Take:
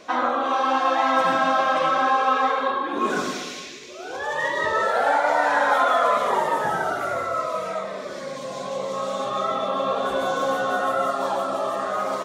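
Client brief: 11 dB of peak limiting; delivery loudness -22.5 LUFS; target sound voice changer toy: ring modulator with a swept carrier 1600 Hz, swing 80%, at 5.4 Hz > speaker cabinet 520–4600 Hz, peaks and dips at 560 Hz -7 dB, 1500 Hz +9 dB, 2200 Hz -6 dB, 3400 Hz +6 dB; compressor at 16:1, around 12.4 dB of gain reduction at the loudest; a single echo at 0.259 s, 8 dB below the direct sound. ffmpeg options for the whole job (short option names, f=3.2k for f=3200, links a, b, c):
-af "acompressor=threshold=-28dB:ratio=16,alimiter=level_in=5dB:limit=-24dB:level=0:latency=1,volume=-5dB,aecho=1:1:259:0.398,aeval=exprs='val(0)*sin(2*PI*1600*n/s+1600*0.8/5.4*sin(2*PI*5.4*n/s))':c=same,highpass=520,equalizer=f=560:t=q:w=4:g=-7,equalizer=f=1.5k:t=q:w=4:g=9,equalizer=f=2.2k:t=q:w=4:g=-6,equalizer=f=3.4k:t=q:w=4:g=6,lowpass=f=4.6k:w=0.5412,lowpass=f=4.6k:w=1.3066,volume=13.5dB"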